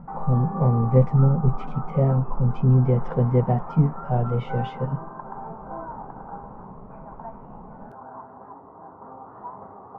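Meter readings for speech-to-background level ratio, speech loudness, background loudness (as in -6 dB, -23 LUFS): 16.0 dB, -22.0 LUFS, -38.0 LUFS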